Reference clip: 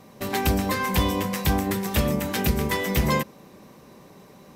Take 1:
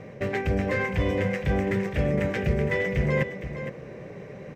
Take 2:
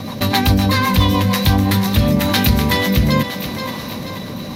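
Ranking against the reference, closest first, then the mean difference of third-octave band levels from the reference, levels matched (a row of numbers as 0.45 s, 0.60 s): 2, 1; 6.5 dB, 8.5 dB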